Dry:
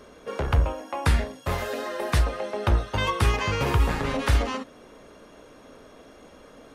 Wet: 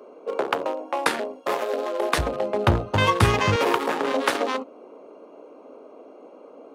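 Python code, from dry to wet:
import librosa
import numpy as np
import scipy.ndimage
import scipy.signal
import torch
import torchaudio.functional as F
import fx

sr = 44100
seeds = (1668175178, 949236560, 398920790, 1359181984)

y = fx.wiener(x, sr, points=25)
y = fx.highpass(y, sr, hz=fx.steps((0.0, 310.0), (2.18, 88.0), (3.56, 300.0)), slope=24)
y = y * 10.0 ** (7.0 / 20.0)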